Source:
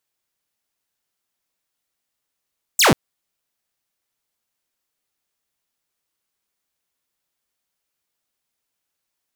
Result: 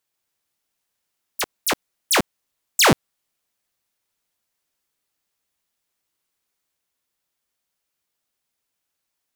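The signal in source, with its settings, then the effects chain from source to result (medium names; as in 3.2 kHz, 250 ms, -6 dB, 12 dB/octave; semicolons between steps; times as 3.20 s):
laser zap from 8.5 kHz, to 110 Hz, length 0.14 s saw, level -8 dB
ever faster or slower copies 135 ms, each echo +6 st, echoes 3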